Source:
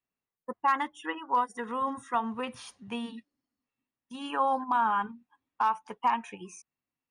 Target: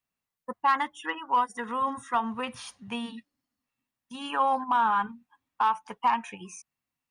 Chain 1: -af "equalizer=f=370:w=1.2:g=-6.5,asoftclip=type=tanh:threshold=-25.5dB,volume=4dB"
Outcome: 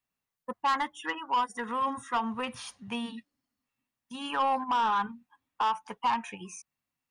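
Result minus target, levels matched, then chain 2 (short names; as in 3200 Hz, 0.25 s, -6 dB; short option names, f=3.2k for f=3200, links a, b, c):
soft clip: distortion +12 dB
-af "equalizer=f=370:w=1.2:g=-6.5,asoftclip=type=tanh:threshold=-17dB,volume=4dB"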